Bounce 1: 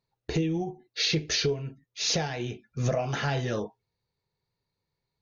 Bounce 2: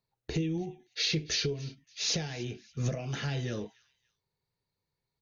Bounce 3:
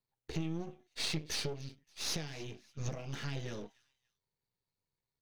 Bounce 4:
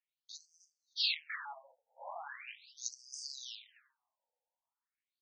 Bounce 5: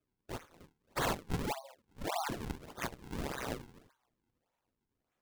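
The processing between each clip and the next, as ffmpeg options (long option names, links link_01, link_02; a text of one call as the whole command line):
ffmpeg -i in.wav -filter_complex "[0:a]acrossover=split=440|1800[link_01][link_02][link_03];[link_02]acompressor=threshold=-44dB:ratio=6[link_04];[link_03]aecho=1:1:286|572:0.1|0.031[link_05];[link_01][link_04][link_05]amix=inputs=3:normalize=0,volume=-3dB" out.wav
ffmpeg -i in.wav -af "aeval=exprs='if(lt(val(0),0),0.251*val(0),val(0))':channel_layout=same,volume=-3dB" out.wav
ffmpeg -i in.wav -af "dynaudnorm=framelen=260:gausssize=9:maxgain=7.5dB,afftfilt=real='re*between(b*sr/1024,650*pow(6700/650,0.5+0.5*sin(2*PI*0.4*pts/sr))/1.41,650*pow(6700/650,0.5+0.5*sin(2*PI*0.4*pts/sr))*1.41)':imag='im*between(b*sr/1024,650*pow(6700/650,0.5+0.5*sin(2*PI*0.4*pts/sr))/1.41,650*pow(6700/650,0.5+0.5*sin(2*PI*0.4*pts/sr))*1.41)':win_size=1024:overlap=0.75,volume=2.5dB" out.wav
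ffmpeg -i in.wav -filter_complex "[0:a]acrossover=split=1400[link_01][link_02];[link_02]alimiter=level_in=8.5dB:limit=-24dB:level=0:latency=1:release=267,volume=-8.5dB[link_03];[link_01][link_03]amix=inputs=2:normalize=0,acrusher=samples=42:mix=1:aa=0.000001:lfo=1:lforange=67.2:lforate=1.7,volume=9dB" out.wav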